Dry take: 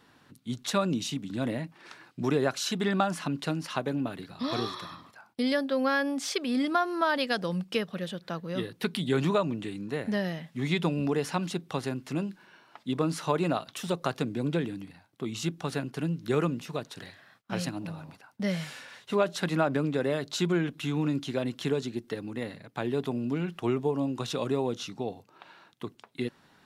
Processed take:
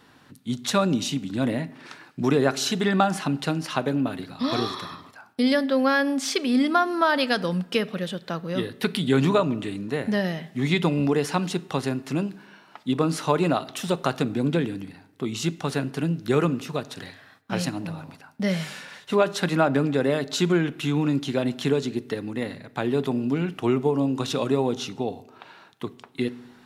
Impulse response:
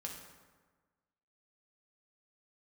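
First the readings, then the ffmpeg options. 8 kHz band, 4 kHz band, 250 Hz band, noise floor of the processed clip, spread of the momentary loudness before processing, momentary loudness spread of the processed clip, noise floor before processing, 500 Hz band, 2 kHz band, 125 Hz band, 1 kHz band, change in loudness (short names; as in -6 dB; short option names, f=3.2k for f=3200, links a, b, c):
+5.5 dB, +5.5 dB, +6.0 dB, -54 dBFS, 12 LU, 12 LU, -62 dBFS, +5.5 dB, +5.5 dB, +5.5 dB, +5.5 dB, +5.5 dB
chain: -filter_complex "[0:a]asplit=2[a][b];[1:a]atrim=start_sample=2205,asetrate=66150,aresample=44100[c];[b][c]afir=irnorm=-1:irlink=0,volume=-7dB[d];[a][d]amix=inputs=2:normalize=0,volume=4dB"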